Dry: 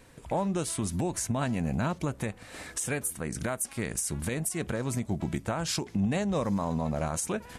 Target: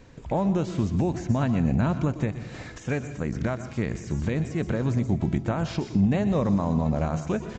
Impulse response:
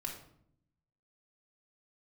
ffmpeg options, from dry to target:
-filter_complex "[0:a]asplit=2[link_01][link_02];[1:a]atrim=start_sample=2205,adelay=122[link_03];[link_02][link_03]afir=irnorm=-1:irlink=0,volume=-11dB[link_04];[link_01][link_04]amix=inputs=2:normalize=0,aresample=16000,aresample=44100,acrossover=split=3500[link_05][link_06];[link_06]acompressor=threshold=-49dB:ratio=4:attack=1:release=60[link_07];[link_05][link_07]amix=inputs=2:normalize=0,lowshelf=frequency=460:gain=7.5"

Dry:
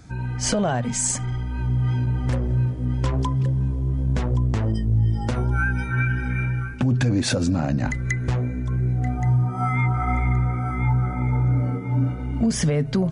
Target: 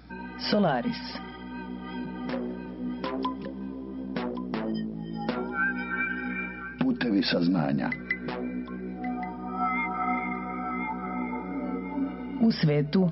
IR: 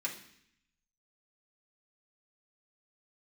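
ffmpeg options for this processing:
-af "afftfilt=real='re*between(b*sr/4096,140,5500)':imag='im*between(b*sr/4096,140,5500)':win_size=4096:overlap=0.75,aeval=exprs='val(0)+0.00355*(sin(2*PI*60*n/s)+sin(2*PI*2*60*n/s)/2+sin(2*PI*3*60*n/s)/3+sin(2*PI*4*60*n/s)/4+sin(2*PI*5*60*n/s)/5)':channel_layout=same,volume=-1.5dB"

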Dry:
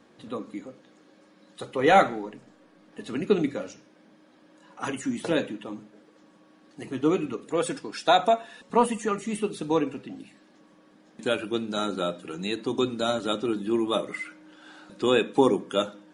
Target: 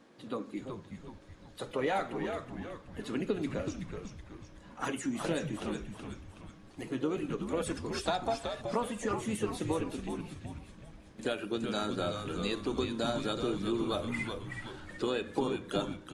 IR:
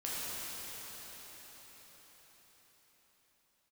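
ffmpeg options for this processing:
-filter_complex "[0:a]acompressor=threshold=-26dB:ratio=6,asplit=2[link_01][link_02];[link_02]asetrate=52444,aresample=44100,atempo=0.840896,volume=-12dB[link_03];[link_01][link_03]amix=inputs=2:normalize=0,asplit=7[link_04][link_05][link_06][link_07][link_08][link_09][link_10];[link_05]adelay=374,afreqshift=-110,volume=-6dB[link_11];[link_06]adelay=748,afreqshift=-220,volume=-12.7dB[link_12];[link_07]adelay=1122,afreqshift=-330,volume=-19.5dB[link_13];[link_08]adelay=1496,afreqshift=-440,volume=-26.2dB[link_14];[link_09]adelay=1870,afreqshift=-550,volume=-33dB[link_15];[link_10]adelay=2244,afreqshift=-660,volume=-39.7dB[link_16];[link_04][link_11][link_12][link_13][link_14][link_15][link_16]amix=inputs=7:normalize=0,volume=-3dB"

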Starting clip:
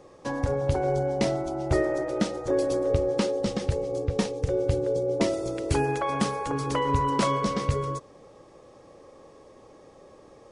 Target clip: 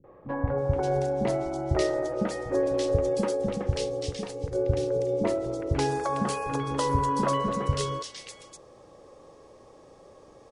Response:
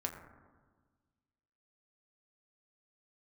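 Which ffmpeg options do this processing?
-filter_complex "[0:a]asettb=1/sr,asplit=3[link_01][link_02][link_03];[link_01]atrim=end=3.914[link_04];[link_02]atrim=start=3.91:end=4.51,asetpts=PTS-STARTPTS,afade=type=in:duration=0.004:curve=qsin,afade=type=out:start_time=0.596:duration=0.004:curve=qsin,acompressor=threshold=-28dB:ratio=6[link_05];[link_03]atrim=start=4.506[link_06];[link_04][link_05]acrossfade=duration=0.004:curve1=hsin:curve2=qsin[link_07];[link_07][link_06]acrossfade=duration=0.004:curve1=qsin:curve2=hsin,asettb=1/sr,asplit=3[link_08][link_09][link_10];[link_08]atrim=end=6.044[link_11];[link_09]atrim=start=6.04:end=7.58,asetpts=PTS-STARTPTS,afade=type=in:duration=0.004:curve=qsin,afade=type=out:start_time=1.536:duration=0.004:curve=qsin,bandreject=frequency=2300:width=5.4[link_12];[link_10]atrim=start=7.576[link_13];[link_11][link_12]acrossfade=duration=0.004:curve1=hsin:curve2=qsin[link_14];[link_14][link_13]acrossfade=duration=0.004:curve1=qsin:curve2=hsin,acrossover=split=260|2100[link_15][link_16][link_17];[link_16]adelay=40[link_18];[link_17]adelay=580[link_19];[link_15][link_18][link_19]amix=inputs=3:normalize=0"

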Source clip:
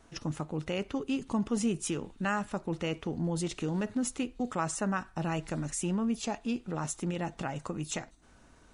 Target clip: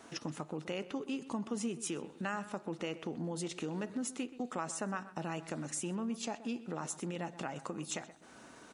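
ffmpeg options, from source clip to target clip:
ffmpeg -i in.wav -filter_complex "[0:a]highpass=200,acompressor=threshold=-52dB:ratio=2,asplit=2[link_01][link_02];[link_02]adelay=127,lowpass=frequency=2300:poles=1,volume=-14.5dB,asplit=2[link_03][link_04];[link_04]adelay=127,lowpass=frequency=2300:poles=1,volume=0.37,asplit=2[link_05][link_06];[link_06]adelay=127,lowpass=frequency=2300:poles=1,volume=0.37[link_07];[link_03][link_05][link_07]amix=inputs=3:normalize=0[link_08];[link_01][link_08]amix=inputs=2:normalize=0,volume=7dB" out.wav

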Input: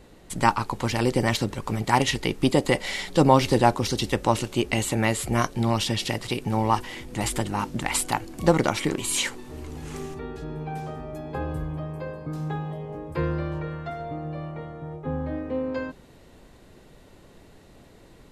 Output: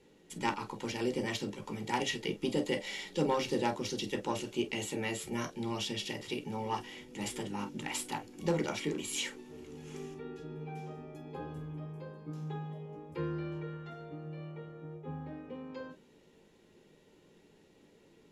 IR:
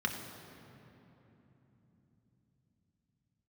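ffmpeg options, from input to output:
-filter_complex "[0:a]aeval=exprs='0.708*(cos(1*acos(clip(val(0)/0.708,-1,1)))-cos(1*PI/2))+0.126*(cos(2*acos(clip(val(0)/0.708,-1,1)))-cos(2*PI/2))+0.178*(cos(3*acos(clip(val(0)/0.708,-1,1)))-cos(3*PI/2))+0.0141*(cos(4*acos(clip(val(0)/0.708,-1,1)))-cos(4*PI/2))+0.0708*(cos(5*acos(clip(val(0)/0.708,-1,1)))-cos(5*PI/2))':channel_layout=same[link_01];[1:a]atrim=start_sample=2205,atrim=end_sample=4410,asetrate=83790,aresample=44100[link_02];[link_01][link_02]afir=irnorm=-1:irlink=0,volume=-7.5dB"

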